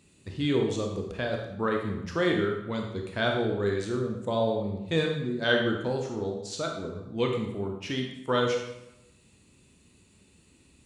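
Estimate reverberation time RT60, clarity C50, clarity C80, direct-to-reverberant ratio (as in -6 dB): 0.90 s, 4.0 dB, 7.0 dB, 1.5 dB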